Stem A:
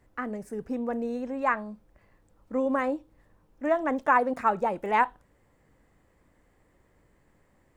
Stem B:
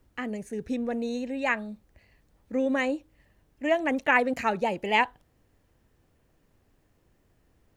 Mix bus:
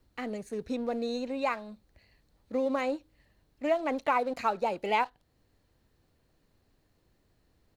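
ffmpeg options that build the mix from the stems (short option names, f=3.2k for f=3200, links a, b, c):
-filter_complex "[0:a]aeval=exprs='sgn(val(0))*max(abs(val(0))-0.00473,0)':c=same,volume=-6.5dB,asplit=2[a][b];[1:a]volume=-1,adelay=0.6,volume=-3.5dB[c];[b]apad=whole_len=342638[d];[c][d]sidechaincompress=threshold=-32dB:ratio=8:attack=16:release=480[e];[a][e]amix=inputs=2:normalize=0,equalizer=f=4.2k:w=4:g=10"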